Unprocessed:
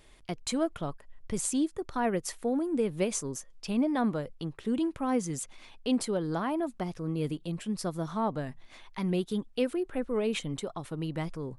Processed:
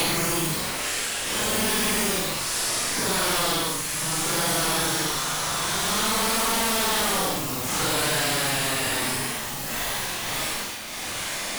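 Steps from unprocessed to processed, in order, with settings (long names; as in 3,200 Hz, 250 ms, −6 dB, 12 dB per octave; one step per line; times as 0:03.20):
compressing power law on the bin magnitudes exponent 0.25
extreme stretch with random phases 9.2×, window 0.05 s, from 0:07.51
flutter between parallel walls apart 7.7 metres, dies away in 0.4 s
in parallel at −6 dB: sine wavefolder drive 18 dB, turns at −8 dBFS
on the sum: multiband upward and downward compressor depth 70%
level −7.5 dB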